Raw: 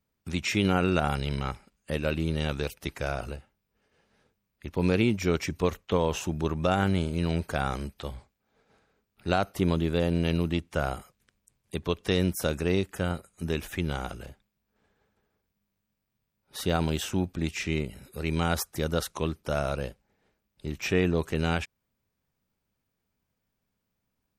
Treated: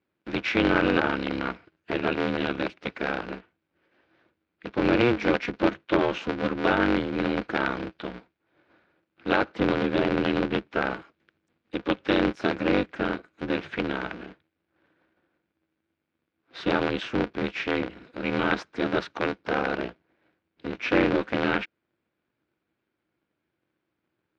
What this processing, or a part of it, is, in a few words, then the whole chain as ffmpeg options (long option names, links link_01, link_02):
ring modulator pedal into a guitar cabinet: -af "aeval=exprs='val(0)*sgn(sin(2*PI*120*n/s))':channel_layout=same,highpass=96,equalizer=frequency=330:width_type=q:width=4:gain=7,equalizer=frequency=490:width_type=q:width=4:gain=3,equalizer=frequency=1500:width_type=q:width=4:gain=7,equalizer=frequency=2300:width_type=q:width=4:gain=4,lowpass=frequency=4100:width=0.5412,lowpass=frequency=4100:width=1.3066"